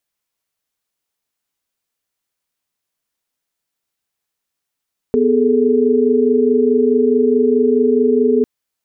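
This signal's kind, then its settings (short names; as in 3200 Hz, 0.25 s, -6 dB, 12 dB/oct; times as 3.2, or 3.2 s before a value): chord B3/G#4/A4 sine, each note -15 dBFS 3.30 s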